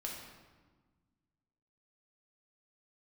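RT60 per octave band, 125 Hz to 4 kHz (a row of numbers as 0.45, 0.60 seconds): 2.2, 2.1, 1.4, 1.4, 1.1, 0.95 seconds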